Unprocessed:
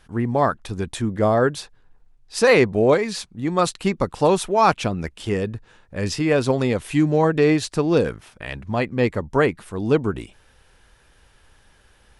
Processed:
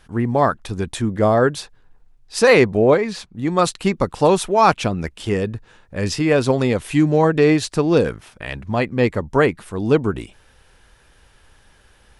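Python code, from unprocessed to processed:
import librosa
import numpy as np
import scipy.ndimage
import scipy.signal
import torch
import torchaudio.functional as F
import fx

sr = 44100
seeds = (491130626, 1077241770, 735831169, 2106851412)

y = fx.high_shelf(x, sr, hz=4300.0, db=-10.5, at=(2.77, 3.35))
y = y * librosa.db_to_amplitude(2.5)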